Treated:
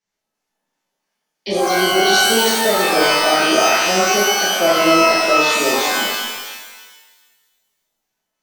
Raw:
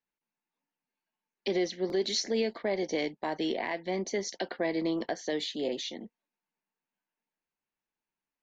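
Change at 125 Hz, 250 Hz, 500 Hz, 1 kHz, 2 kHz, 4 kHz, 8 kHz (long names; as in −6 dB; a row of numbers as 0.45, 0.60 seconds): +11.5 dB, +11.5 dB, +14.5 dB, +24.0 dB, +23.5 dB, +20.0 dB, can't be measured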